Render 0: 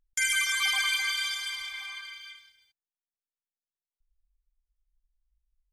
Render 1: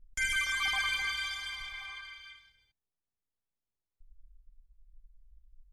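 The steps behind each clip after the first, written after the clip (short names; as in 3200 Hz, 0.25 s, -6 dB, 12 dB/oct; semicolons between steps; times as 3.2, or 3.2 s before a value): tilt -3.5 dB/oct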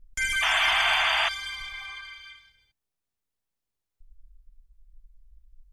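painted sound noise, 0.42–1.29, 620–3600 Hz -28 dBFS; in parallel at -12 dB: soft clip -28.5 dBFS, distortion -9 dB; on the sum: gain +2.5 dB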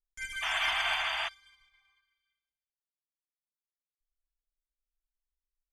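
upward expander 2.5:1, over -43 dBFS; gain -6 dB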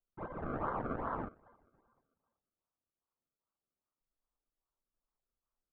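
compressor, threshold -31 dBFS, peak gain reduction 5.5 dB; decimation with a swept rate 33×, swing 100% 2.5 Hz; ladder low-pass 1400 Hz, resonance 55%; gain +5 dB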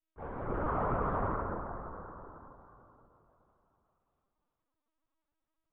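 plate-style reverb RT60 3.5 s, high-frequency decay 0.3×, DRR -6.5 dB; LPC vocoder at 8 kHz pitch kept; gain -2 dB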